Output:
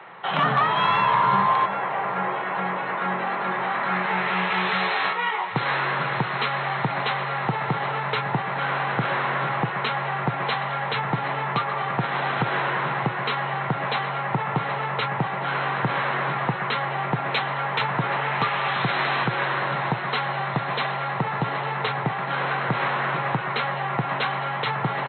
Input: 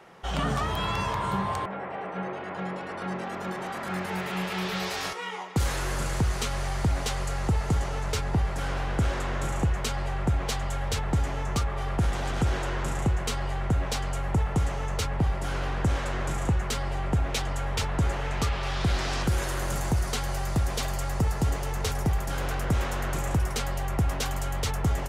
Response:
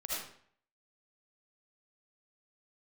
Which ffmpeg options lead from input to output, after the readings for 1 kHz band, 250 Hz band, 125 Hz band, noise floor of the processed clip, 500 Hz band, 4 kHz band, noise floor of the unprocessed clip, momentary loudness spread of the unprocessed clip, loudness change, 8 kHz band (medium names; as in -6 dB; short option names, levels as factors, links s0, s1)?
+10.5 dB, +0.5 dB, -2.5 dB, -29 dBFS, +4.5 dB, +4.5 dB, -35 dBFS, 5 LU, +5.0 dB, under -30 dB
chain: -af "equalizer=f=250:t=o:w=1:g=-4,equalizer=f=1000:t=o:w=1:g=8,equalizer=f=2000:t=o:w=1:g=7,afftfilt=real='re*between(b*sr/4096,110,4200)':imag='im*between(b*sr/4096,110,4200)':win_size=4096:overlap=0.75,acontrast=50,aecho=1:1:771|1542|2313|3084|3855:0.15|0.0823|0.0453|0.0249|0.0137,volume=0.708"